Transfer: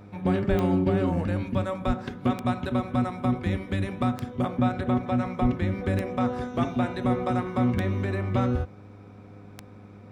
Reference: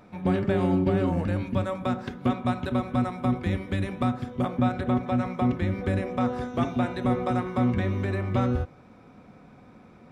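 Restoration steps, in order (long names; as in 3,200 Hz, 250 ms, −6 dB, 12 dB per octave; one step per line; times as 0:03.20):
click removal
hum removal 101.1 Hz, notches 5
0:00.49–0:00.61: high-pass filter 140 Hz 24 dB per octave
0:01.86–0:01.98: high-pass filter 140 Hz 24 dB per octave
0:05.41–0:05.53: high-pass filter 140 Hz 24 dB per octave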